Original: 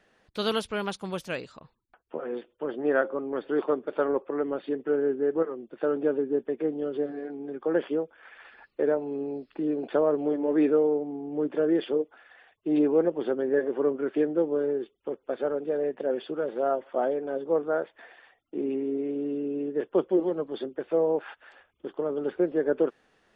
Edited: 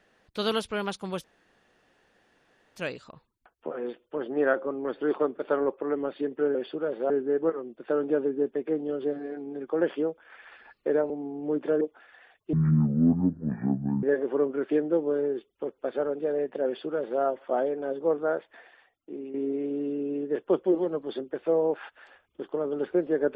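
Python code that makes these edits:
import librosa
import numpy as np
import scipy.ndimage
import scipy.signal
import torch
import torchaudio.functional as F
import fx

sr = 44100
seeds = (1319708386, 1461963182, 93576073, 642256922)

y = fx.edit(x, sr, fx.insert_room_tone(at_s=1.24, length_s=1.52),
    fx.cut(start_s=9.03, length_s=1.96),
    fx.cut(start_s=11.7, length_s=0.28),
    fx.speed_span(start_s=12.7, length_s=0.78, speed=0.52),
    fx.duplicate(start_s=16.11, length_s=0.55, to_s=5.03),
    fx.fade_out_to(start_s=17.81, length_s=0.98, floor_db=-11.0), tone=tone)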